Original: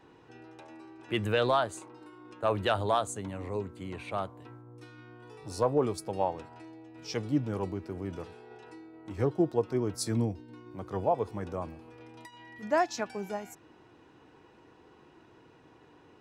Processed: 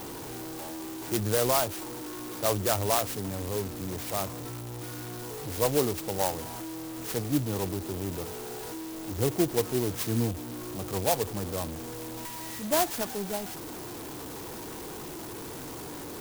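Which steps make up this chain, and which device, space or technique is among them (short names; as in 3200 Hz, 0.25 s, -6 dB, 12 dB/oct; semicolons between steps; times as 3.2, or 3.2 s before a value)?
early CD player with a faulty converter (zero-crossing step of -34.5 dBFS; clock jitter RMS 0.13 ms)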